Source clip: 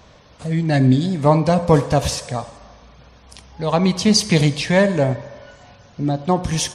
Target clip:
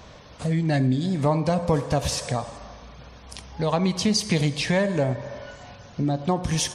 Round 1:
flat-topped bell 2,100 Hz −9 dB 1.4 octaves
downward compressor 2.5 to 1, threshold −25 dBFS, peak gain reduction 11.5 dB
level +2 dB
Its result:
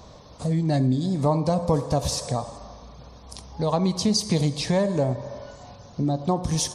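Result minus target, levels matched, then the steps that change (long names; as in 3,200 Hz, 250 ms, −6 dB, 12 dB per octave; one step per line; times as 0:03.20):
2,000 Hz band −8.5 dB
remove: flat-topped bell 2,100 Hz −9 dB 1.4 octaves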